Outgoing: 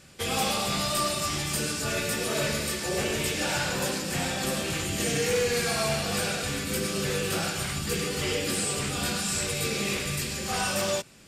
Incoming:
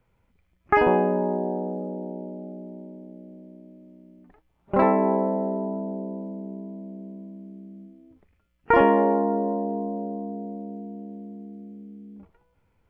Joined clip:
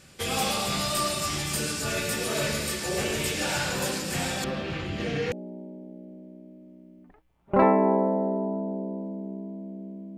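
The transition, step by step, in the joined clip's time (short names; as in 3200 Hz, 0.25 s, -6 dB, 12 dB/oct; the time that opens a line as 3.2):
outgoing
4.44–5.32 air absorption 270 m
5.32 switch to incoming from 2.52 s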